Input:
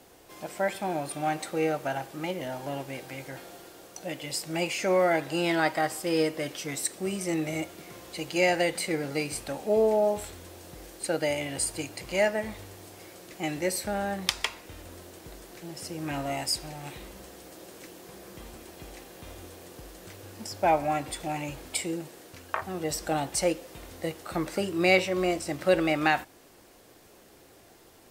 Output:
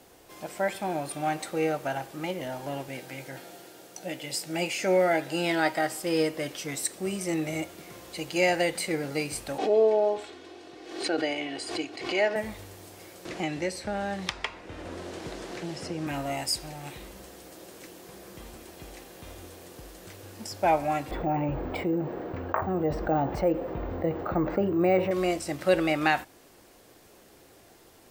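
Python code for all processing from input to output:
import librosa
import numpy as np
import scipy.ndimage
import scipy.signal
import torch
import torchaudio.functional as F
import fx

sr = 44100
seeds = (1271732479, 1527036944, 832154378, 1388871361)

y = fx.chain(x, sr, fx.highpass(hz=110.0, slope=12),
    fx.notch(hz=1100.0, q=6.9),
    fx.doubler(ms=16.0, db=-12), at=(2.88, 6.02))
y = fx.chain(y, sr, fx.cheby1_bandpass(low_hz=240.0, high_hz=3900.0, order=2),
    fx.comb(ms=2.7, depth=0.59),
    fx.pre_swell(db_per_s=76.0), at=(9.58, 12.36))
y = fx.chain(y, sr, fx.air_absorb(metres=80.0),
    fx.band_squash(depth_pct=70), at=(13.25, 16.07))
y = fx.chain(y, sr, fx.lowpass(hz=1100.0, slope=12),
    fx.resample_bad(factor=2, down='none', up='hold'),
    fx.env_flatten(amount_pct=50), at=(21.11, 25.11))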